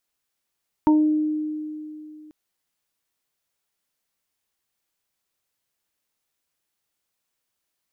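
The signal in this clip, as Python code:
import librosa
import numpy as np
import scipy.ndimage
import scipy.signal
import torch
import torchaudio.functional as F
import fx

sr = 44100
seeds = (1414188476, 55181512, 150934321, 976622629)

y = fx.additive(sr, length_s=1.44, hz=306.0, level_db=-12.5, upper_db=(-17.5, -4.5), decay_s=2.86, upper_decays_s=(0.77, 0.22))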